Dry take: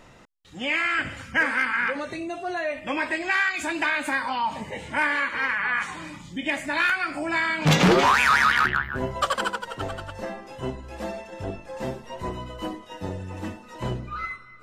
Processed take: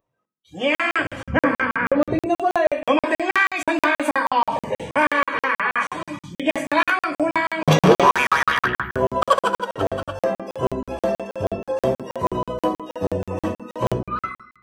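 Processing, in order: 1.26–2.26 RIAA curve playback; spectral noise reduction 26 dB; HPF 82 Hz 12 dB/oct; bell 4000 Hz -8.5 dB 2.4 oct; AGC gain up to 14 dB; reverb RT60 0.65 s, pre-delay 3 ms, DRR 9 dB; crackling interface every 0.16 s, samples 2048, zero, from 0.75; gain -6.5 dB

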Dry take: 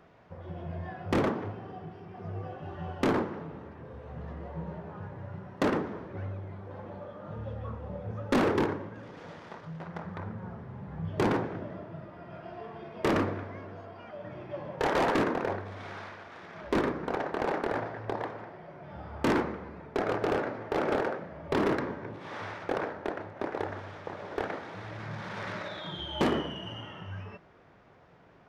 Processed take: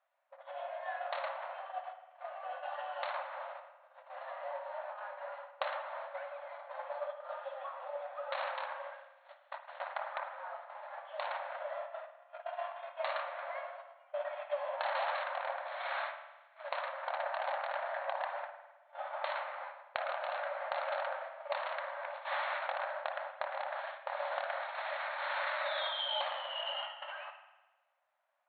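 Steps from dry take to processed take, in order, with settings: self-modulated delay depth 0.11 ms; gate -41 dBFS, range -30 dB; compressor 10:1, threshold -41 dBFS, peak gain reduction 18.5 dB; brick-wall FIR band-pass 530–4400 Hz; spring tank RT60 1.1 s, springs 51 ms, chirp 65 ms, DRR 7.5 dB; gain +10 dB

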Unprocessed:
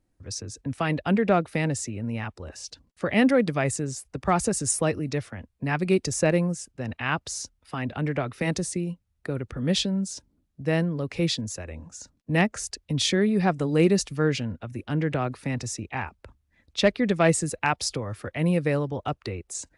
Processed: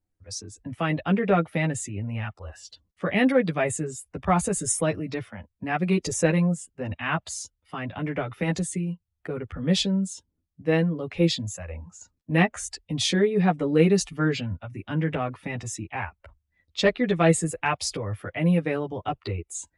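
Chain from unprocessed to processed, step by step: spectral noise reduction 11 dB; chorus voices 6, 0.34 Hz, delay 11 ms, depth 1.5 ms; gain +3 dB

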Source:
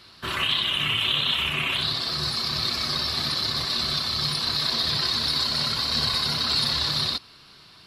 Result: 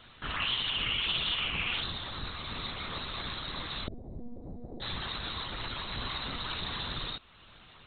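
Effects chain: 3.87–4.82 inverse Chebyshev low-pass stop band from 1200 Hz, stop band 40 dB; in parallel at +1 dB: compressor, threshold -41 dBFS, peak gain reduction 19.5 dB; on the sum: monotone LPC vocoder at 8 kHz 240 Hz; gain -8 dB

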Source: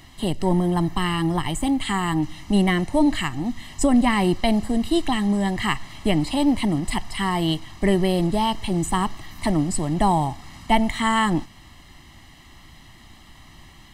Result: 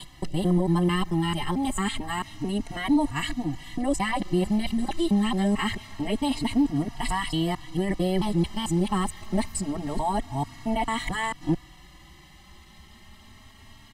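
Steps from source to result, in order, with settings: local time reversal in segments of 0.222 s; limiter -13.5 dBFS, peak gain reduction 8.5 dB; endless flanger 3.6 ms +0.26 Hz

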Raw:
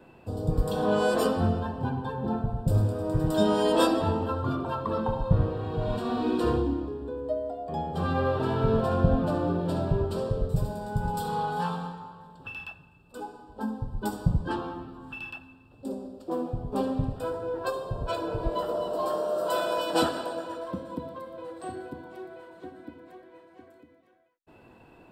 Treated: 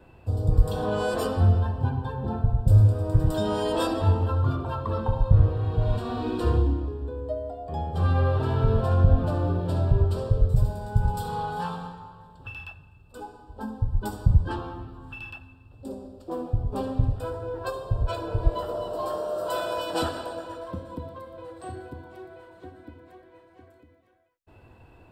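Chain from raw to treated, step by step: in parallel at +2 dB: limiter -17 dBFS, peak gain reduction 9.5 dB; on the sum: resonant low shelf 130 Hz +9.5 dB, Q 1.5; gain -8 dB

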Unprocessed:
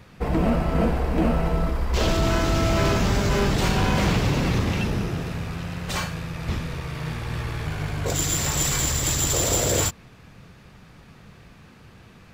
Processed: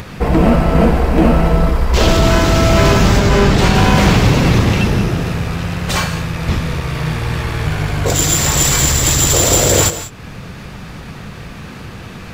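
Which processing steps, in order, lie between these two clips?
3.19–3.75 high shelf 7800 Hz -8 dB; in parallel at -2 dB: upward compressor, threshold -24 dBFS; on the sum: non-linear reverb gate 0.21 s rising, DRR 11.5 dB; gain +5 dB

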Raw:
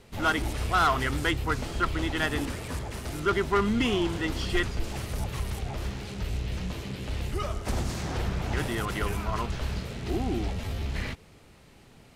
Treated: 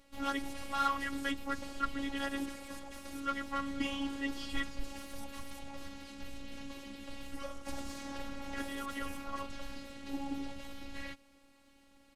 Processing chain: comb 6.6 ms, depth 60%; robotiser 277 Hz; gain -8 dB

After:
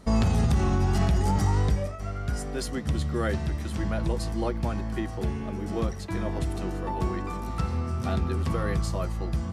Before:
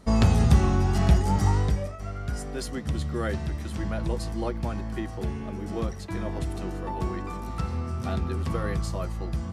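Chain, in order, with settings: limiter -16.5 dBFS, peak gain reduction 9 dB; gain +1.5 dB

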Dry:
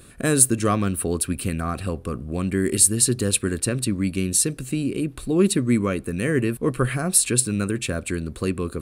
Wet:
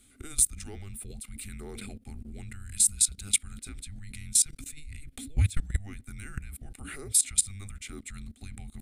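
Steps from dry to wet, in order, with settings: frequency shift -300 Hz; fixed phaser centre 400 Hz, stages 4; level quantiser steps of 20 dB

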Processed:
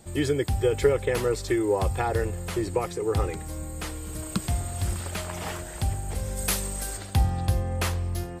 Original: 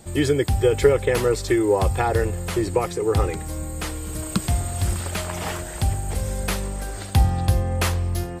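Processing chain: 6.36–6.96 high shelf 5000 Hz -> 2700 Hz +12 dB; gain -5 dB

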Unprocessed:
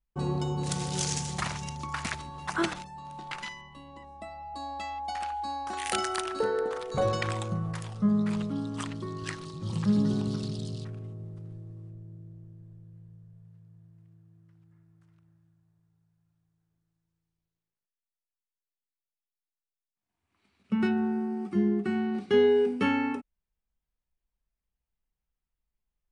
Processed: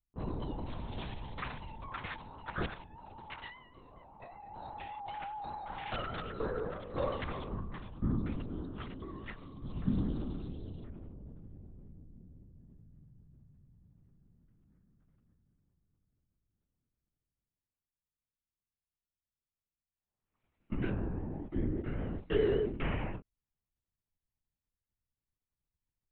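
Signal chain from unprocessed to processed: vibrato 5.1 Hz 63 cents; LPC vocoder at 8 kHz whisper; mismatched tape noise reduction decoder only; gain -7.5 dB

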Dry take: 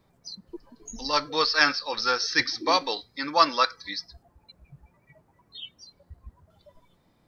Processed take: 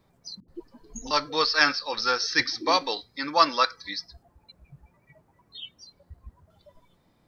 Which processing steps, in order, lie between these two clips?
0.4–1.11 dispersion highs, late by 81 ms, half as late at 380 Hz

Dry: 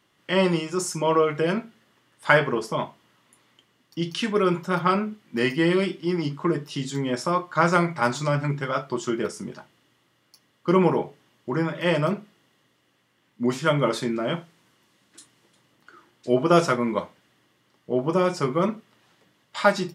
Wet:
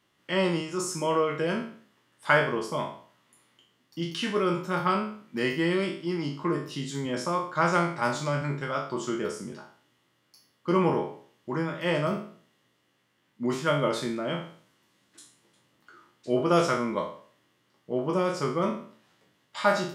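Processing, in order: spectral trails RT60 0.50 s; gain -5.5 dB

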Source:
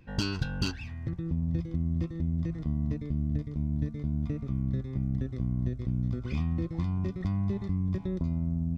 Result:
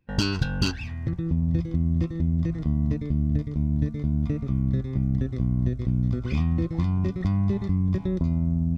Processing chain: gate with hold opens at -35 dBFS; gain +6 dB

